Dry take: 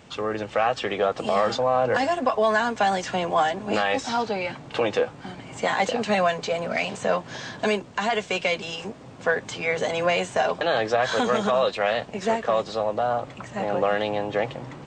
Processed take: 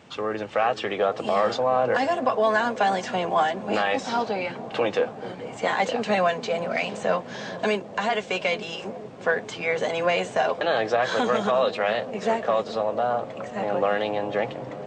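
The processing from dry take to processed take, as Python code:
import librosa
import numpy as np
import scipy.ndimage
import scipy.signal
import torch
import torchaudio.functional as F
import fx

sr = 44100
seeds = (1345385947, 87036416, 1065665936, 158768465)

p1 = fx.highpass(x, sr, hz=140.0, slope=6)
p2 = fx.high_shelf(p1, sr, hz=6100.0, db=-7.5)
y = p2 + fx.echo_wet_lowpass(p2, sr, ms=437, feedback_pct=76, hz=560.0, wet_db=-12, dry=0)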